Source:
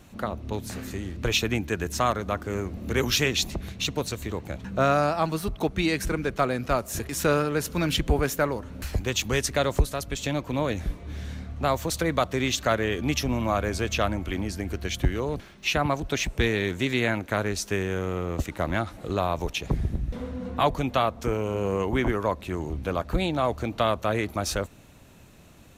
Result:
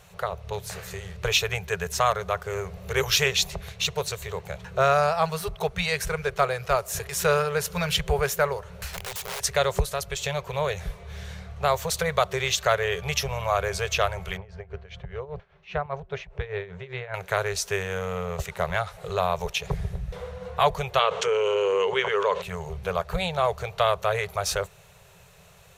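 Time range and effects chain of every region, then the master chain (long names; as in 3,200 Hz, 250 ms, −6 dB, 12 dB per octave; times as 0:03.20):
0:08.93–0:09.44: downward compressor 8 to 1, threshold −27 dBFS + wrap-around overflow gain 29.5 dB
0:14.37–0:17.14: amplitude tremolo 5 Hz, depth 83% + head-to-tape spacing loss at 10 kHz 38 dB
0:20.99–0:22.42: loudspeaker in its box 290–7,200 Hz, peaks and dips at 450 Hz +5 dB, 710 Hz −9 dB, 3,000 Hz +9 dB, 5,200 Hz −5 dB + envelope flattener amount 70%
whole clip: brick-wall band-stop 190–380 Hz; low-shelf EQ 200 Hz −6.5 dB; level +2.5 dB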